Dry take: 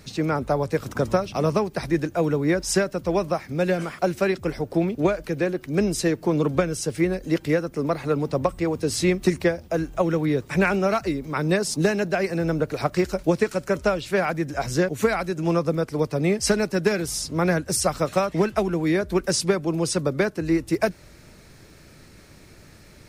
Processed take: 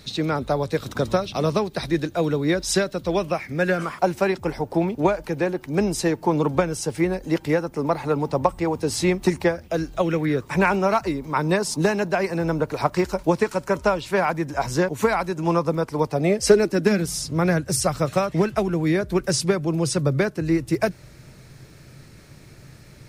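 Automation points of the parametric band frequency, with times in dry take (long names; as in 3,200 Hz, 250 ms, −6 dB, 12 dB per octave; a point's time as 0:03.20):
parametric band +11 dB 0.42 octaves
0:03.09 3,800 Hz
0:04.03 880 Hz
0:09.49 880 Hz
0:09.82 5,600 Hz
0:10.49 950 Hz
0:16.02 950 Hz
0:17.26 130 Hz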